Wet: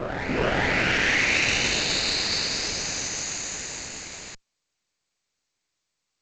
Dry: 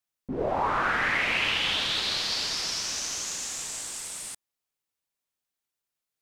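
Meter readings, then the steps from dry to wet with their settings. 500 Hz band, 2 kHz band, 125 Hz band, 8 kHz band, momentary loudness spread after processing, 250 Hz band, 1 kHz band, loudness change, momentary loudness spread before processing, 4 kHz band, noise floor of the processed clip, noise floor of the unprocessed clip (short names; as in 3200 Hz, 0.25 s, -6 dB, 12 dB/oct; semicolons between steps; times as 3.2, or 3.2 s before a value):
+4.5 dB, +4.5 dB, +9.0 dB, +3.5 dB, 14 LU, +7.5 dB, -2.0 dB, +3.5 dB, 11 LU, +2.0 dB, -81 dBFS, under -85 dBFS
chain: minimum comb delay 0.45 ms; reverse echo 0.422 s -5.5 dB; gain +4.5 dB; G.722 64 kbps 16000 Hz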